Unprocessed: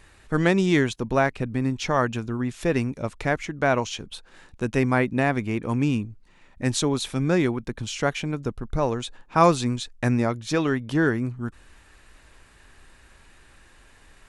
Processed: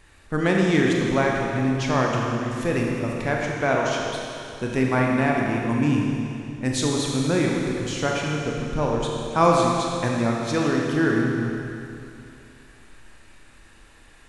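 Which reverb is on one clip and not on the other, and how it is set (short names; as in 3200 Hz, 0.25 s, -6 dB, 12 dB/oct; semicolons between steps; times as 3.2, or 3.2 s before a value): Schroeder reverb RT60 2.7 s, combs from 27 ms, DRR -1.5 dB; gain -2 dB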